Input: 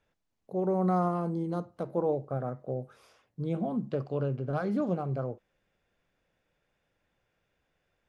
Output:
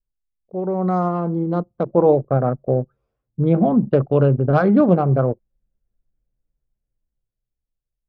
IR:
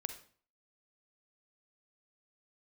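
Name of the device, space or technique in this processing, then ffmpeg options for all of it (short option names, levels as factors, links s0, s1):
voice memo with heavy noise removal: -af "anlmdn=1.58,dynaudnorm=f=340:g=9:m=3.55,volume=1.68"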